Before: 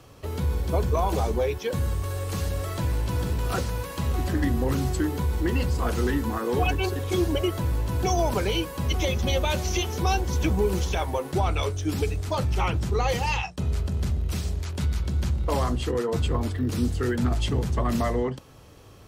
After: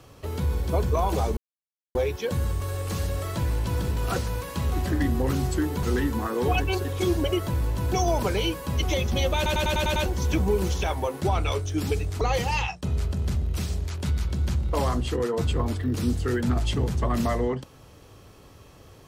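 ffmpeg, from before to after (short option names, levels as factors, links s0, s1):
-filter_complex "[0:a]asplit=11[s0][s1][s2][s3][s4][s5][s6][s7][s8][s9][s10];[s0]atrim=end=1.37,asetpts=PTS-STARTPTS,afade=t=out:st=1.366:d=0.004:c=hsin,apad=pad_dur=0.58[s11];[s1]atrim=start=1.37:end=5.252,asetpts=PTS-STARTPTS,afade=t=in:d=0.004:c=hsin[s12];[s2]atrim=start=5.938:end=9.572[s13];[s3]atrim=start=9.468:end=9.572[s14];[s4]atrim=start=9.468:end=9.572[s15];[s5]atrim=start=9.468:end=9.572[s16];[s6]atrim=start=9.468:end=9.572[s17];[s7]atrim=start=9.468:end=9.572[s18];[s8]atrim=start=9.468:end=9.572[s19];[s9]atrim=start=10.168:end=12.322[s20];[s10]atrim=start=12.958[s21];[s11][s12]concat=n=2:v=0:a=1[s22];[s22][s13]acrossfade=d=0.004:c1=hsin:c2=hsin[s23];[s23][s14]acrossfade=d=0.004:c1=hsin:c2=hsin[s24];[s24][s15]acrossfade=d=0.004:c1=hsin:c2=hsin[s25];[s25][s16]acrossfade=d=0.004:c1=hsin:c2=hsin[s26];[s26][s17]acrossfade=d=0.004:c1=hsin:c2=hsin[s27];[s27][s18]acrossfade=d=0.004:c1=hsin:c2=hsin[s28];[s28][s19]acrossfade=d=0.004:c1=hsin:c2=hsin[s29];[s29][s20]acrossfade=d=0.004:c1=hsin:c2=hsin[s30];[s30][s21]acrossfade=d=0.004:c1=hsin:c2=hsin"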